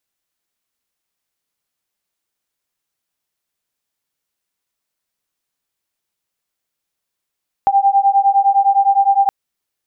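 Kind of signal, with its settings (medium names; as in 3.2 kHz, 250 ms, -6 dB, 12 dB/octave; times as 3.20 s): beating tones 787 Hz, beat 9.8 Hz, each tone -13 dBFS 1.62 s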